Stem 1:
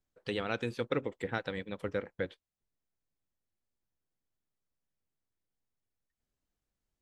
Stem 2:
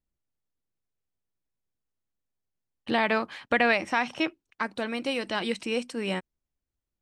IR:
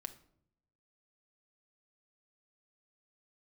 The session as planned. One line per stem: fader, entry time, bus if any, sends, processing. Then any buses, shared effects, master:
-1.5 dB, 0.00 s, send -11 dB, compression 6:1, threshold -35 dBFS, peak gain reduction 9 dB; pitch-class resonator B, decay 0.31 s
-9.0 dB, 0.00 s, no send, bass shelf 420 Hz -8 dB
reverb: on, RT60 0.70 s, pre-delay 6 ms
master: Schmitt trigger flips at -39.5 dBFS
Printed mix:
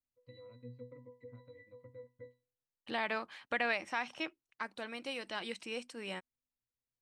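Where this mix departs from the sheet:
stem 1: send -11 dB -> -17 dB; master: missing Schmitt trigger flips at -39.5 dBFS

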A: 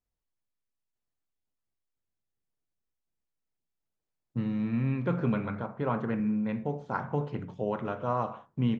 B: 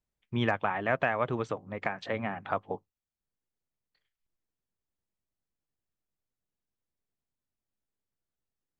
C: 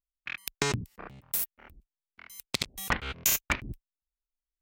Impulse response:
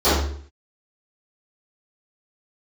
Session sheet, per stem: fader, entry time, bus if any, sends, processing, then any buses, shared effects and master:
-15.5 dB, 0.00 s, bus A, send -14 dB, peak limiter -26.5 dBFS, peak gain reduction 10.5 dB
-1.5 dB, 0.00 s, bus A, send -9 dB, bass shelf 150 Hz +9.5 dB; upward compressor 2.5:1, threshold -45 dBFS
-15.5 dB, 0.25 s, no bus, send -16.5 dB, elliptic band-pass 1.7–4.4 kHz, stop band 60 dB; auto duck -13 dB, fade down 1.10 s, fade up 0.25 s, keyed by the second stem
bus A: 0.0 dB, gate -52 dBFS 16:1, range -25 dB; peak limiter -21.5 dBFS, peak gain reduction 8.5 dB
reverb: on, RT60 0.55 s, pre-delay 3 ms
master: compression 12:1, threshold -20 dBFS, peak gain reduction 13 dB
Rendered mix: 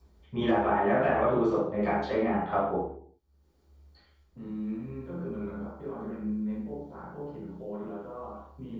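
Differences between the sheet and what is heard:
stem B -1.5 dB -> -11.0 dB; stem C: muted

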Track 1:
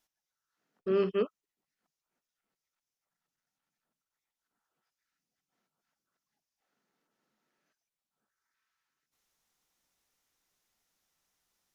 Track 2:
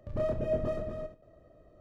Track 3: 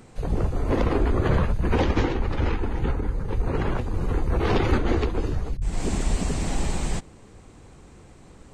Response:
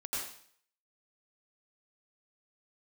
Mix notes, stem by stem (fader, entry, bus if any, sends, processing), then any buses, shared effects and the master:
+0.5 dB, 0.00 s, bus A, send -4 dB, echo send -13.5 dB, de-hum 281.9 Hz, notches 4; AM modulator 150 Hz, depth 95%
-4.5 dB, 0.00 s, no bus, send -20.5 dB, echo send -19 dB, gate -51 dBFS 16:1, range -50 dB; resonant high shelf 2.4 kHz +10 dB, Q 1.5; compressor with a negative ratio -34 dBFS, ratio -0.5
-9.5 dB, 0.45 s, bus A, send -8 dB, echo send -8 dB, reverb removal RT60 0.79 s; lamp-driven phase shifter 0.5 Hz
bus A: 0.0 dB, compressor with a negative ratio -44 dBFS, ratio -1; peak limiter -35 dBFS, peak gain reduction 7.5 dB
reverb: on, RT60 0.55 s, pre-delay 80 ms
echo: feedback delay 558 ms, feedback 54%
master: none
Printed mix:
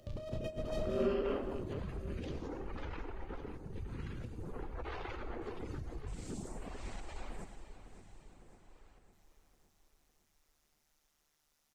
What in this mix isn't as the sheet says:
stem 2: missing gate -51 dBFS 16:1, range -50 dB; stem 3 -9.5 dB -> -16.0 dB

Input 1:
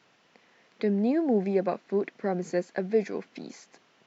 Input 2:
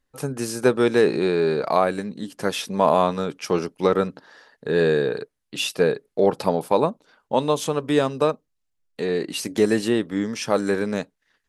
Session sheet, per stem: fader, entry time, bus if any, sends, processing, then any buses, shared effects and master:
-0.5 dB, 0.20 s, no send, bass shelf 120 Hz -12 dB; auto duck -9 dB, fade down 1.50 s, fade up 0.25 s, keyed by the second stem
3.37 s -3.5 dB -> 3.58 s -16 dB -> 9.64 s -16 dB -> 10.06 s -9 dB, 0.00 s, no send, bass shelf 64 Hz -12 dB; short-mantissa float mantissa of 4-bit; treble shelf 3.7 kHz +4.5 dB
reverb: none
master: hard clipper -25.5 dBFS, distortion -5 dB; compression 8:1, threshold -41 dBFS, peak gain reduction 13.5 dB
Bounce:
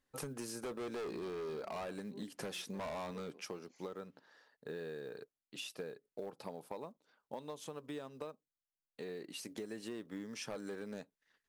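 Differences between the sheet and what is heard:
stem 1 -0.5 dB -> -10.0 dB; stem 2: missing treble shelf 3.7 kHz +4.5 dB

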